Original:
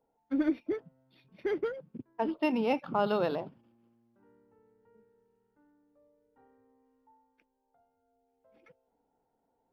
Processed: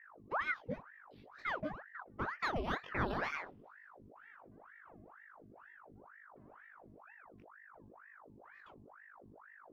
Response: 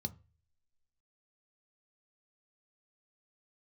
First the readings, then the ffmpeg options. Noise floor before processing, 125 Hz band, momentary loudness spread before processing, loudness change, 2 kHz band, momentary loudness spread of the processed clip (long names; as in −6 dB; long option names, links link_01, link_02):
−78 dBFS, 0.0 dB, 10 LU, −7.5 dB, +4.0 dB, 21 LU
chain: -filter_complex "[0:a]flanger=delay=19.5:depth=2.2:speed=1.3,asplit=2[link_01][link_02];[link_02]acompressor=threshold=-46dB:ratio=6,volume=-1.5dB[link_03];[link_01][link_03]amix=inputs=2:normalize=0,aeval=exprs='val(0)+0.00282*(sin(2*PI*50*n/s)+sin(2*PI*2*50*n/s)/2+sin(2*PI*3*50*n/s)/3+sin(2*PI*4*50*n/s)/4+sin(2*PI*5*50*n/s)/5)':channel_layout=same,aeval=exprs='val(0)*sin(2*PI*1000*n/s+1000*0.85/2.1*sin(2*PI*2.1*n/s))':channel_layout=same,volume=-3.5dB"